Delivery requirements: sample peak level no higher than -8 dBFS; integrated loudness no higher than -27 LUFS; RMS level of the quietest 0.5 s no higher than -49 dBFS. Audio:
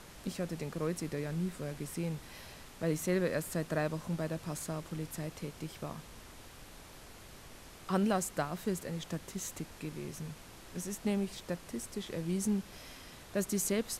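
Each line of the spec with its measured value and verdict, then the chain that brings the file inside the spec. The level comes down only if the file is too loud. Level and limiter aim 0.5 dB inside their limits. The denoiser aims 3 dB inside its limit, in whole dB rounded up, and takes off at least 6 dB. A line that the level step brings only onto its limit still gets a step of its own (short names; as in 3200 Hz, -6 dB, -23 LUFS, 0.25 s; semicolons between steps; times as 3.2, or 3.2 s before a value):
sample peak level -18.5 dBFS: OK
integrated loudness -37.0 LUFS: OK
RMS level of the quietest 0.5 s -52 dBFS: OK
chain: none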